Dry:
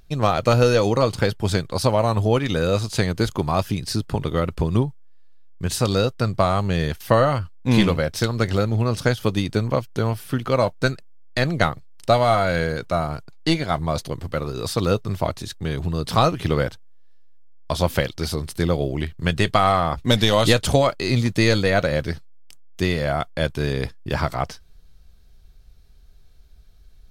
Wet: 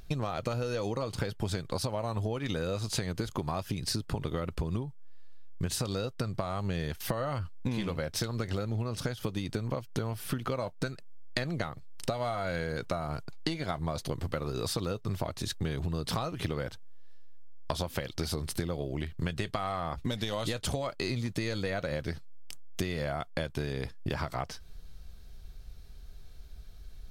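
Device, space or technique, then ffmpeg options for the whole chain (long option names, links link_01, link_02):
serial compression, leveller first: -af "acompressor=threshold=-22dB:ratio=3,acompressor=threshold=-32dB:ratio=10,volume=3dB"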